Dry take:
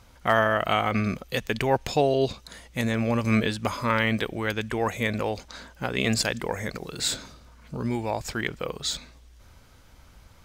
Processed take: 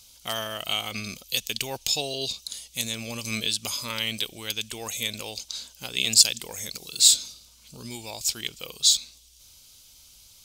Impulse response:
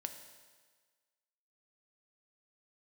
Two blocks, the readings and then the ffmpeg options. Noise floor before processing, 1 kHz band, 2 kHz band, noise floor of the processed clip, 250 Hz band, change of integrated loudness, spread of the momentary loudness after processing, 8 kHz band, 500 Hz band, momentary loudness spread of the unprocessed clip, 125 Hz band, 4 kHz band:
-53 dBFS, -12.0 dB, -6.0 dB, -54 dBFS, -12.0 dB, +2.0 dB, 17 LU, +12.5 dB, -12.0 dB, 11 LU, -12.0 dB, +9.0 dB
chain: -af "aexciter=amount=14.7:drive=3.1:freq=2700,volume=0.251"

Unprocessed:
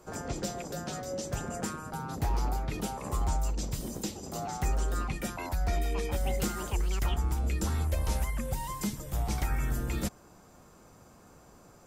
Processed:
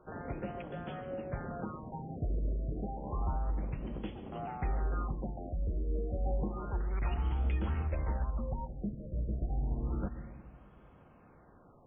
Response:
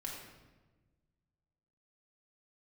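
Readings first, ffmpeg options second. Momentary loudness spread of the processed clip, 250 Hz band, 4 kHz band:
8 LU, -3.5 dB, -17.5 dB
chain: -filter_complex "[0:a]asplit=2[s0][s1];[1:a]atrim=start_sample=2205,adelay=135[s2];[s1][s2]afir=irnorm=-1:irlink=0,volume=0.299[s3];[s0][s3]amix=inputs=2:normalize=0,afftfilt=real='re*lt(b*sr/1024,660*pow(3500/660,0.5+0.5*sin(2*PI*0.3*pts/sr)))':imag='im*lt(b*sr/1024,660*pow(3500/660,0.5+0.5*sin(2*PI*0.3*pts/sr)))':win_size=1024:overlap=0.75,volume=0.631"

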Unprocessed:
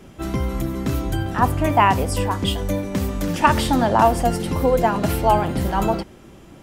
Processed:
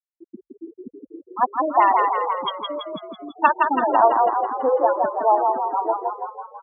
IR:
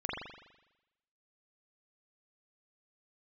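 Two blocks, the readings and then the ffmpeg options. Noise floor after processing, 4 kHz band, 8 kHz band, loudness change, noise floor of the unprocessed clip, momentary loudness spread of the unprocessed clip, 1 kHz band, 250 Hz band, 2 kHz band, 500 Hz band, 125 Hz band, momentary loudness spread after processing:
under -85 dBFS, -6.5 dB, under -40 dB, 0.0 dB, -45 dBFS, 8 LU, +2.0 dB, -10.5 dB, -2.5 dB, -0.5 dB, under -30 dB, 17 LU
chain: -filter_complex "[0:a]highpass=370,lowpass=4500,afftfilt=real='re*gte(hypot(re,im),0.282)':imag='im*gte(hypot(re,im),0.282)':win_size=1024:overlap=0.75,asplit=9[s0][s1][s2][s3][s4][s5][s6][s7][s8];[s1]adelay=165,afreqshift=36,volume=0.668[s9];[s2]adelay=330,afreqshift=72,volume=0.389[s10];[s3]adelay=495,afreqshift=108,volume=0.224[s11];[s4]adelay=660,afreqshift=144,volume=0.13[s12];[s5]adelay=825,afreqshift=180,volume=0.0759[s13];[s6]adelay=990,afreqshift=216,volume=0.0437[s14];[s7]adelay=1155,afreqshift=252,volume=0.0254[s15];[s8]adelay=1320,afreqshift=288,volume=0.0148[s16];[s0][s9][s10][s11][s12][s13][s14][s15][s16]amix=inputs=9:normalize=0"

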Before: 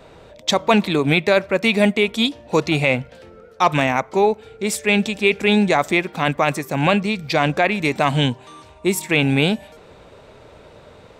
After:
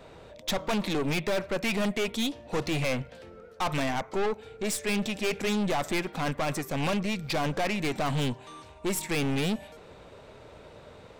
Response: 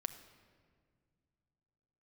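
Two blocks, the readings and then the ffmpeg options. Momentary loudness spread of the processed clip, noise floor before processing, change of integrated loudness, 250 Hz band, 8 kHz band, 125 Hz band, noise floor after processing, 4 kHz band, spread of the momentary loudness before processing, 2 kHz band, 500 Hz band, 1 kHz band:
21 LU, -46 dBFS, -11.0 dB, -10.0 dB, -5.5 dB, -9.5 dB, -50 dBFS, -10.5 dB, 6 LU, -12.5 dB, -11.5 dB, -11.5 dB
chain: -af "aeval=exprs='(tanh(12.6*val(0)+0.4)-tanh(0.4))/12.6':c=same,volume=0.708"

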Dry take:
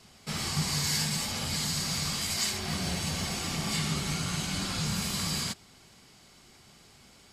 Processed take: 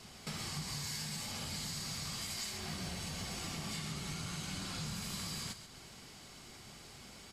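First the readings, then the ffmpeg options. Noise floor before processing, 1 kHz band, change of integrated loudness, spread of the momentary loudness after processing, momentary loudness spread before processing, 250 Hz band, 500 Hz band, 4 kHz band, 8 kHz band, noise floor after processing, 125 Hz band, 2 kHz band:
-57 dBFS, -9.5 dB, -10.0 dB, 13 LU, 4 LU, -10.0 dB, -9.5 dB, -10.0 dB, -10.0 dB, -54 dBFS, -10.0 dB, -9.5 dB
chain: -filter_complex "[0:a]acompressor=threshold=0.00631:ratio=4,asplit=2[s0][s1];[s1]asplit=4[s2][s3][s4][s5];[s2]adelay=133,afreqshift=-36,volume=0.299[s6];[s3]adelay=266,afreqshift=-72,volume=0.111[s7];[s4]adelay=399,afreqshift=-108,volume=0.0407[s8];[s5]adelay=532,afreqshift=-144,volume=0.0151[s9];[s6][s7][s8][s9]amix=inputs=4:normalize=0[s10];[s0][s10]amix=inputs=2:normalize=0,volume=1.33"

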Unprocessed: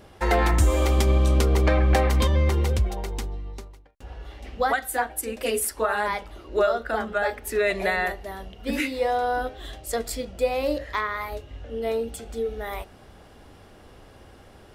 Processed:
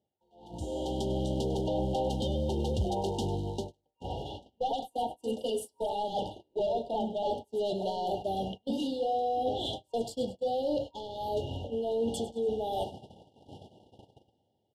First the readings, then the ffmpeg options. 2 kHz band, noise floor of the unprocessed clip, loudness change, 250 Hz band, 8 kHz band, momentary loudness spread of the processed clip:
under -30 dB, -50 dBFS, -8.0 dB, -3.5 dB, -14.5 dB, 9 LU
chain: -filter_complex "[0:a]acrusher=bits=8:mode=log:mix=0:aa=0.000001,highpass=f=100:w=0.5412,highpass=f=100:w=1.3066,asoftclip=type=hard:threshold=0.112,areverse,acompressor=threshold=0.0141:ratio=16,areverse,asoftclip=type=tanh:threshold=0.0251,dynaudnorm=f=170:g=9:m=3.16,lowpass=9100,bass=f=250:g=7,treble=f=4000:g=-10,asplit=2[s0][s1];[s1]aecho=0:1:100|200|300|400:0.168|0.0705|0.0296|0.0124[s2];[s0][s2]amix=inputs=2:normalize=0,agate=range=0.0316:threshold=0.0178:ratio=16:detection=peak,afftfilt=real='re*(1-between(b*sr/4096,940,2800))':imag='im*(1-between(b*sr/4096,940,2800))':win_size=4096:overlap=0.75,lowshelf=f=420:g=-8,volume=1.5"

